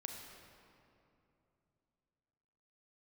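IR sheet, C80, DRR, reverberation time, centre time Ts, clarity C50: 4.0 dB, 2.0 dB, 2.8 s, 80 ms, 3.0 dB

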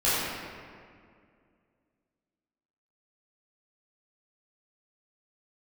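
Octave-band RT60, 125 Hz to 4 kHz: 2.5 s, 2.7 s, 2.3 s, 2.0 s, 1.9 s, 1.3 s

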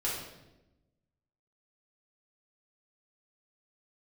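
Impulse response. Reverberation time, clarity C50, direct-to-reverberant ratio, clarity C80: 0.95 s, 1.5 dB, -6.5 dB, 5.0 dB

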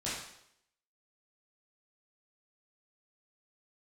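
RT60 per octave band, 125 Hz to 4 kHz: 0.65 s, 0.70 s, 0.75 s, 0.70 s, 0.70 s, 0.70 s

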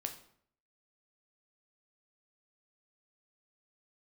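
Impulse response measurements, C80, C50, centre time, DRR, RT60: 14.0 dB, 10.5 dB, 12 ms, 5.0 dB, 0.60 s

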